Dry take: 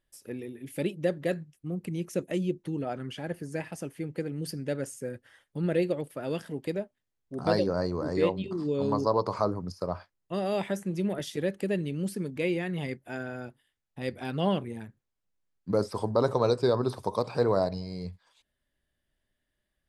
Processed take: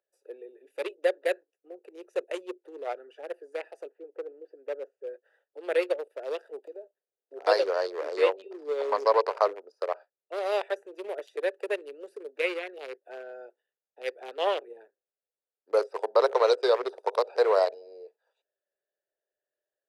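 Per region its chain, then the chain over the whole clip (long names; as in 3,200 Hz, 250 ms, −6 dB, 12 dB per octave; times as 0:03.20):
0:03.87–0:05.07: high-pass filter 56 Hz 24 dB per octave + head-to-tape spacing loss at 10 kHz 44 dB
0:06.66–0:07.34: one scale factor per block 5 bits + low-shelf EQ 400 Hz +10.5 dB + downward compressor 12 to 1, threshold −32 dBFS
whole clip: adaptive Wiener filter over 41 samples; Butterworth high-pass 420 Hz 48 dB per octave; dynamic equaliser 2,300 Hz, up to +4 dB, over −48 dBFS, Q 1.3; level +4.5 dB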